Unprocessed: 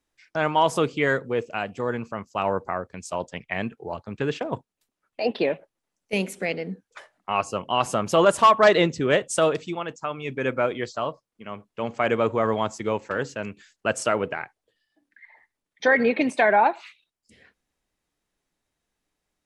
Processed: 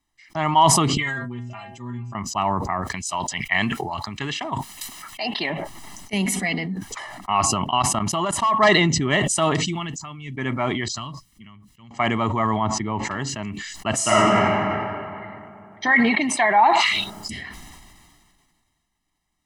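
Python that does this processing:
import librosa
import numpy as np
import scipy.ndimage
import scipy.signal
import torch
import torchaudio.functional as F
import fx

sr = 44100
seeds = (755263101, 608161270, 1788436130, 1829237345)

y = fx.stiff_resonator(x, sr, f0_hz=120.0, decay_s=0.38, stiffness=0.008, at=(0.97, 2.15))
y = fx.tilt_shelf(y, sr, db=-6.5, hz=880.0, at=(2.82, 5.5))
y = fx.comb(y, sr, ms=4.1, depth=0.65, at=(6.25, 6.66))
y = fx.level_steps(y, sr, step_db=23, at=(7.42, 8.54))
y = fx.peak_eq(y, sr, hz=790.0, db=-14.0, octaves=2.5, at=(9.65, 10.37))
y = fx.tone_stack(y, sr, knobs='6-0-2', at=(10.88, 11.91))
y = fx.spacing_loss(y, sr, db_at_10k=25, at=(12.56, 13.03), fade=0.02)
y = fx.reverb_throw(y, sr, start_s=13.95, length_s=0.48, rt60_s=2.7, drr_db=-8.5)
y = fx.low_shelf(y, sr, hz=280.0, db=-9.0, at=(15.91, 16.74))
y = y + 0.91 * np.pad(y, (int(1.0 * sr / 1000.0), 0))[:len(y)]
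y = fx.sustainer(y, sr, db_per_s=28.0)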